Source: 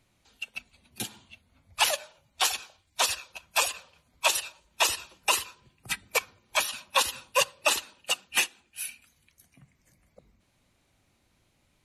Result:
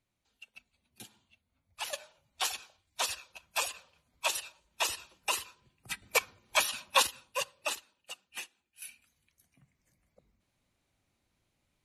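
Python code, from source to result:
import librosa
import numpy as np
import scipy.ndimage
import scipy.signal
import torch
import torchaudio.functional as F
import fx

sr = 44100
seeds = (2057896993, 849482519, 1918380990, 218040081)

y = fx.gain(x, sr, db=fx.steps((0.0, -15.0), (1.93, -7.0), (6.02, -1.0), (7.07, -10.0), (7.75, -17.0), (8.82, -9.0)))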